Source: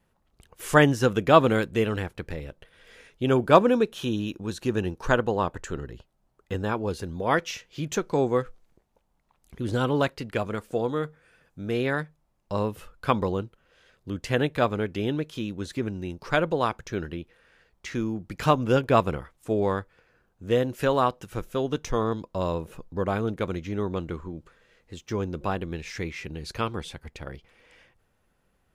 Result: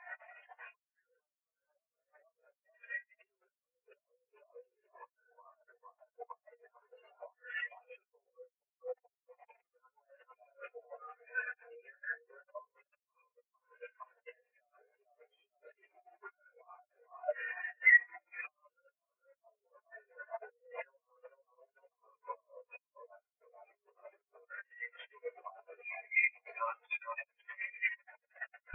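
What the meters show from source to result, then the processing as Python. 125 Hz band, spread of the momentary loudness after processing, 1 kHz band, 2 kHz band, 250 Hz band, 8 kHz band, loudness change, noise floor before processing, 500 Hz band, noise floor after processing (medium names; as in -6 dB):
under -40 dB, 24 LU, -21.5 dB, -3.5 dB, under -40 dB, under -35 dB, -10.0 dB, -70 dBFS, -25.0 dB, under -85 dBFS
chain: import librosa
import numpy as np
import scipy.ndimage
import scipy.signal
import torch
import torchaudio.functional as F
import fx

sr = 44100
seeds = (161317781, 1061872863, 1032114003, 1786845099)

p1 = fx.delta_mod(x, sr, bps=64000, step_db=-25.5)
p2 = fx.lowpass_res(p1, sr, hz=2400.0, q=1.9)
p3 = p2 + fx.echo_split(p2, sr, split_hz=1400.0, low_ms=450, high_ms=97, feedback_pct=52, wet_db=-3, dry=0)
p4 = fx.room_shoebox(p3, sr, seeds[0], volume_m3=420.0, walls='furnished', distance_m=3.2)
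p5 = fx.over_compress(p4, sr, threshold_db=-22.0, ratio=-0.5)
p6 = scipy.signal.sosfilt(scipy.signal.butter(4, 510.0, 'highpass', fs=sr, output='sos'), p5)
y = fx.spectral_expand(p6, sr, expansion=4.0)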